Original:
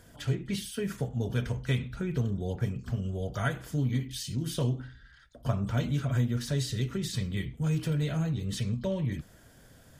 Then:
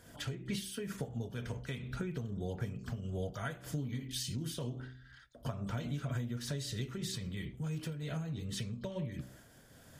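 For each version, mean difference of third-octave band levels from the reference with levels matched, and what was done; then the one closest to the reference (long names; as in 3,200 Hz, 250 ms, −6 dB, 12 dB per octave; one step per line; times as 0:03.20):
3.5 dB: low-shelf EQ 66 Hz −8 dB
hum removal 63.85 Hz, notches 11
downward compressor, threshold −34 dBFS, peak gain reduction 9.5 dB
amplitude modulation by smooth noise, depth 65%
level +2.5 dB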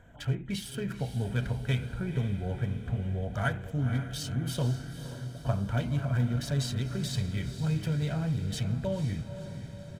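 5.5 dB: adaptive Wiener filter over 9 samples
parametric band 150 Hz −2 dB 2 octaves
comb filter 1.3 ms, depth 35%
on a send: feedback delay with all-pass diffusion 504 ms, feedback 56%, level −10 dB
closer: first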